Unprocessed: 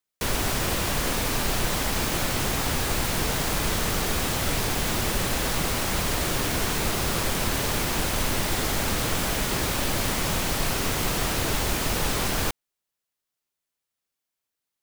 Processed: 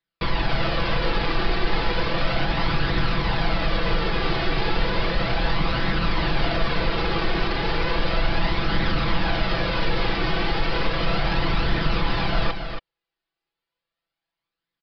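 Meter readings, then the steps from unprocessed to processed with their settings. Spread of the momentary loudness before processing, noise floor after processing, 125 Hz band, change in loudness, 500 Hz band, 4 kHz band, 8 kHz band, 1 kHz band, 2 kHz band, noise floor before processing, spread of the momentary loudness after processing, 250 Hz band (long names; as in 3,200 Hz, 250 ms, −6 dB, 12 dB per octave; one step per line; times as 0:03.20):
0 LU, below −85 dBFS, +3.0 dB, +0.5 dB, +3.0 dB, +0.5 dB, below −25 dB, +3.5 dB, +3.0 dB, −85 dBFS, 1 LU, +2.5 dB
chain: comb filter 6 ms, depth 68%
brickwall limiter −15 dBFS, peak gain reduction 5.5 dB
flanger 0.34 Hz, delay 0.5 ms, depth 2.3 ms, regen +47%
high-frequency loss of the air 110 metres
on a send: single-tap delay 277 ms −7.5 dB
on the sum: downsampling to 11,025 Hz
level +7 dB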